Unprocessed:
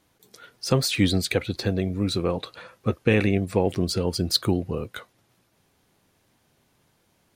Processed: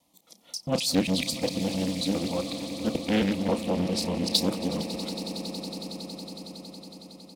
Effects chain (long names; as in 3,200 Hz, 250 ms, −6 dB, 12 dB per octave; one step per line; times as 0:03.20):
reversed piece by piece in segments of 134 ms
high-pass filter 72 Hz
phaser with its sweep stopped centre 410 Hz, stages 6
double-tracking delay 32 ms −12 dB
echo that builds up and dies away 92 ms, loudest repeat 8, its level −17 dB
highs frequency-modulated by the lows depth 0.68 ms